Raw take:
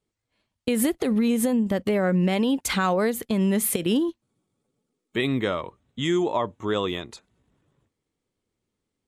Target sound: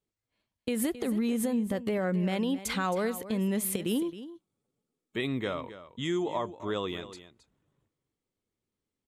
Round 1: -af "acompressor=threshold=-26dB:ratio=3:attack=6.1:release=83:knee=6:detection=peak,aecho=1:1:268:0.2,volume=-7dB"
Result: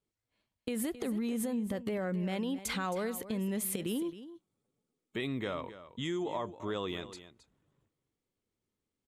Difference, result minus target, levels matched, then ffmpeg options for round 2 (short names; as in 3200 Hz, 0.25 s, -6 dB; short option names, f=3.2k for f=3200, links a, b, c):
compressor: peak gain reduction +6.5 dB
-af "aecho=1:1:268:0.2,volume=-7dB"